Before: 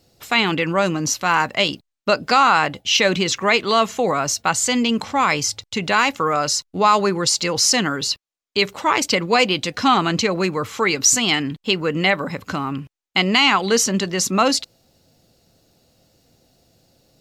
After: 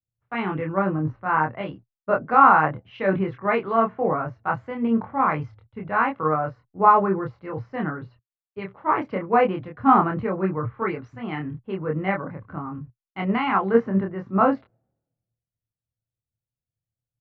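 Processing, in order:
low-pass filter 1,600 Hz 24 dB per octave
parametric band 120 Hz +9.5 dB 0.5 octaves
double-tracking delay 26 ms −3 dB
multiband upward and downward expander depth 100%
level −5.5 dB

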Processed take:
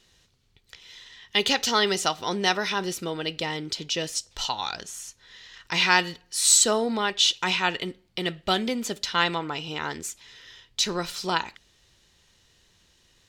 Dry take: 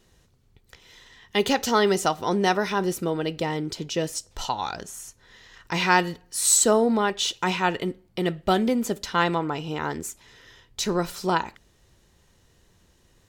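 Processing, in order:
parametric band 3,700 Hz +12.5 dB 2.4 octaves
level −6 dB

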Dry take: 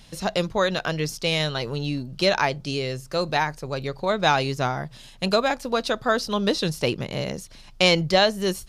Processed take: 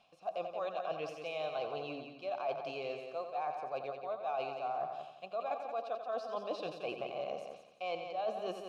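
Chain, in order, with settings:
formant filter a
reversed playback
downward compressor 10 to 1, threshold −42 dBFS, peak gain reduction 21 dB
reversed playback
echo machine with several playback heads 88 ms, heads first and second, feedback 43%, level −9 dB
dynamic equaliser 590 Hz, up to +5 dB, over −55 dBFS, Q 0.72
level +2.5 dB

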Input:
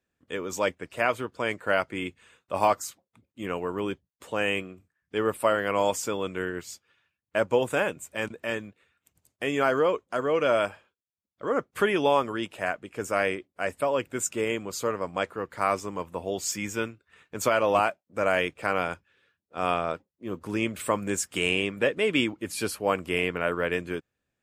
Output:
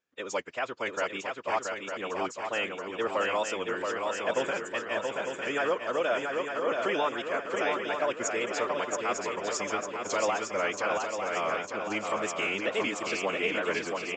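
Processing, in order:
high-pass filter 550 Hz 6 dB per octave
brickwall limiter −17 dBFS, peak gain reduction 7.5 dB
phase-vocoder stretch with locked phases 0.58×
tape wow and flutter 99 cents
downsampling to 16,000 Hz
feedback echo with a long and a short gap by turns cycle 903 ms, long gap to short 3 to 1, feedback 52%, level −4 dB

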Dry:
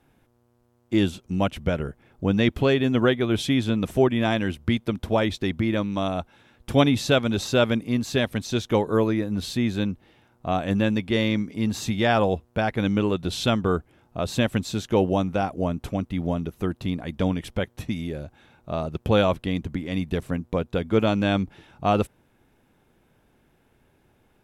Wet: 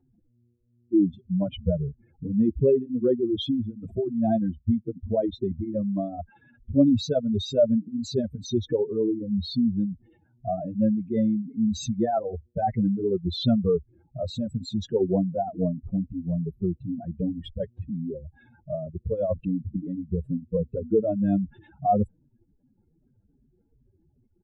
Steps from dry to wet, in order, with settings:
expanding power law on the bin magnitudes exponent 3.5
barber-pole flanger 5 ms −2.6 Hz
level +2 dB

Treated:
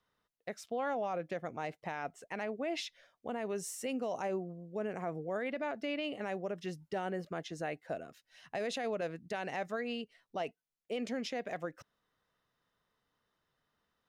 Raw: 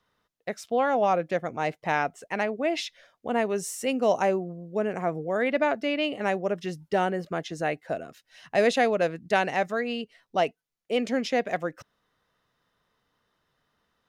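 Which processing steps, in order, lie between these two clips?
brickwall limiter −20.5 dBFS, peak gain reduction 10 dB
level −7.5 dB

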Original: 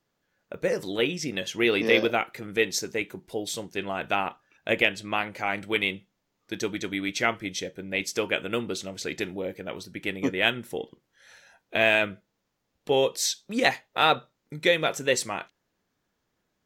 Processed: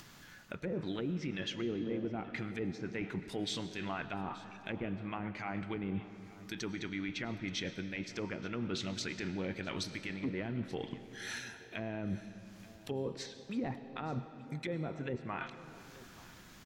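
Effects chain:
treble cut that deepens with the level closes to 450 Hz, closed at −21.5 dBFS
parametric band 520 Hz −12 dB 1.2 octaves
reversed playback
downward compressor 6 to 1, threshold −46 dBFS, peak gain reduction 19 dB
reversed playback
brickwall limiter −39.5 dBFS, peak gain reduction 7 dB
upward compression, threshold −56 dBFS
single-tap delay 878 ms −19.5 dB
on a send at −11 dB: convolution reverb RT60 3.2 s, pre-delay 65 ms
on the sum: level +12 dB

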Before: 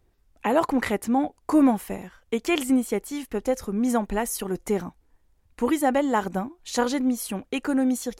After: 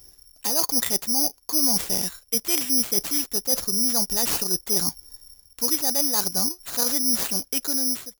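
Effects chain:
fade-out on the ending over 1.58 s
reversed playback
downward compressor 5 to 1, threshold −36 dBFS, peak gain reduction 19 dB
reversed playback
bad sample-rate conversion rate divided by 8×, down none, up zero stuff
level +5.5 dB

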